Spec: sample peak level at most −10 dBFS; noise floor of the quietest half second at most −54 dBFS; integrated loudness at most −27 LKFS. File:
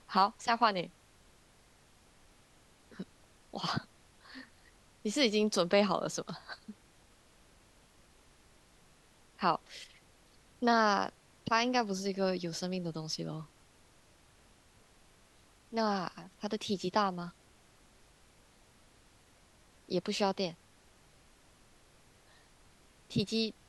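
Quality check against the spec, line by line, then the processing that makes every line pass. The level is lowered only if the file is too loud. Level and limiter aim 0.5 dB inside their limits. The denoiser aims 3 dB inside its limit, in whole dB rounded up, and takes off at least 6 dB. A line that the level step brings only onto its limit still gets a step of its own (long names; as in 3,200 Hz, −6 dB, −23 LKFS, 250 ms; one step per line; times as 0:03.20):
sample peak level −12.5 dBFS: in spec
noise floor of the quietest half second −63 dBFS: in spec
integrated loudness −33.0 LKFS: in spec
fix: no processing needed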